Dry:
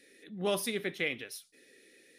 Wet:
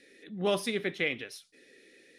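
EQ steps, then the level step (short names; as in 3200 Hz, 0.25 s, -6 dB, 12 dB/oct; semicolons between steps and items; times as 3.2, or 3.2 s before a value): air absorption 51 m; +3.0 dB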